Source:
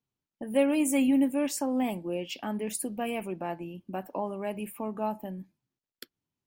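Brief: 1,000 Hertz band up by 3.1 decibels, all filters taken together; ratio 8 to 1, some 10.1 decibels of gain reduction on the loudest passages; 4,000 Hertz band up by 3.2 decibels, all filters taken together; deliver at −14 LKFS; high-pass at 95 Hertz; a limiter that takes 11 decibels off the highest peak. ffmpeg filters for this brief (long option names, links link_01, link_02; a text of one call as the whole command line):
ffmpeg -i in.wav -af "highpass=95,equalizer=frequency=1000:width_type=o:gain=4,equalizer=frequency=4000:width_type=o:gain=4.5,acompressor=threshold=-29dB:ratio=8,volume=25dB,alimiter=limit=-5dB:level=0:latency=1" out.wav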